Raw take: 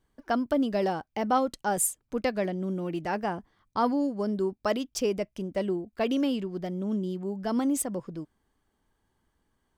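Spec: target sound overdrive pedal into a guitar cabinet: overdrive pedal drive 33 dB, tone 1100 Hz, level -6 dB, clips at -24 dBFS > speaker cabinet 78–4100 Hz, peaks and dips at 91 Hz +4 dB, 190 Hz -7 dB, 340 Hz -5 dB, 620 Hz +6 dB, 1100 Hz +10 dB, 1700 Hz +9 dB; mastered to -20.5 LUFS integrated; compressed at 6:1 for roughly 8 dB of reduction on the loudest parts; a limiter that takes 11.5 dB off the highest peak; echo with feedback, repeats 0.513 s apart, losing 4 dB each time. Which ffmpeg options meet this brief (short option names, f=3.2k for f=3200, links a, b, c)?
-filter_complex "[0:a]acompressor=threshold=-30dB:ratio=6,alimiter=level_in=6dB:limit=-24dB:level=0:latency=1,volume=-6dB,aecho=1:1:513|1026|1539|2052|2565|3078|3591|4104|4617:0.631|0.398|0.25|0.158|0.0994|0.0626|0.0394|0.0249|0.0157,asplit=2[a][b];[b]highpass=f=720:p=1,volume=33dB,asoftclip=type=tanh:threshold=-24dB[c];[a][c]amix=inputs=2:normalize=0,lowpass=f=1.1k:p=1,volume=-6dB,highpass=78,equalizer=f=91:t=q:w=4:g=4,equalizer=f=190:t=q:w=4:g=-7,equalizer=f=340:t=q:w=4:g=-5,equalizer=f=620:t=q:w=4:g=6,equalizer=f=1.1k:t=q:w=4:g=10,equalizer=f=1.7k:t=q:w=4:g=9,lowpass=f=4.1k:w=0.5412,lowpass=f=4.1k:w=1.3066,volume=10dB"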